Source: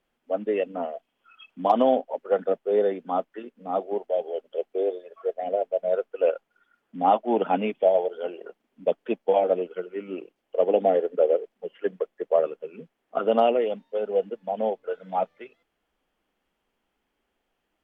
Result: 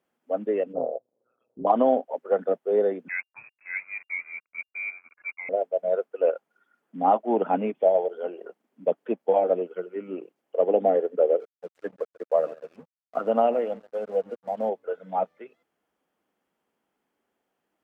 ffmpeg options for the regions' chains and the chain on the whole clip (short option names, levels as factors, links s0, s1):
-filter_complex "[0:a]asettb=1/sr,asplit=3[s0][s1][s2];[s0]atrim=end=0.734[s3];[s1]atrim=start=0.73:end=1.67,asetpts=PTS-STARTPTS,afade=t=in:d=0.004:c=qsin,afade=t=out:st=0.936:d=0.004:c=qsin,tremolo=f=120:d=0.788,lowpass=f=520:t=q:w=4.6[s4];[s2]atrim=start=1.666[s5];[s3][s4]acrossfade=d=0.004:c1=hsin:c2=qsin[s6];[s6][s5]acrossfade=d=0.004:c1=qsin:c2=hsin,asettb=1/sr,asplit=3[s7][s8][s9];[s7]atrim=end=3.084[s10];[s8]atrim=start=3.08:end=5.49,asetpts=PTS-STARTPTS,afade=t=in:d=0.004:c=qsin,afade=t=out:st=2.406:d=0.004:c=qsin,aeval=exprs='sgn(val(0))*max(abs(val(0))-0.00335,0)':c=same,lowpass=f=2400:t=q:w=0.5098,lowpass=f=2400:t=q:w=0.6013,lowpass=f=2400:t=q:w=0.9,lowpass=f=2400:t=q:w=2.563,afreqshift=-2800[s11];[s9]atrim=start=5.486[s12];[s10][s11]acrossfade=d=0.004:c1=hsin:c2=qsin[s13];[s13][s12]acrossfade=d=0.004:c1=qsin:c2=hsin,asettb=1/sr,asplit=3[s14][s15][s16];[s14]atrim=end=11.404[s17];[s15]atrim=start=11.4:end=14.69,asetpts=PTS-STARTPTS,afade=t=in:d=0.004:c=qsin,afade=t=out:st=3.286:d=0.004:c=qsin,equalizer=f=390:t=o:w=0.24:g=-11,aecho=1:1:140|280:0.106|0.0318,atrim=end_sample=145089,aeval=exprs='sgn(val(0))*max(abs(val(0))-0.00398,0)':c=same[s18];[s16]atrim=start=14.686[s19];[s17][s18]acrossfade=d=0.004:c1=hsin:c2=qsin[s20];[s20][s19]acrossfade=d=0.004:c1=qsin:c2=hsin,acrossover=split=2800[s21][s22];[s22]acompressor=threshold=0.00112:ratio=4:attack=1:release=60[s23];[s21][s23]amix=inputs=2:normalize=0,highpass=130,equalizer=f=3100:w=1:g=-6.5"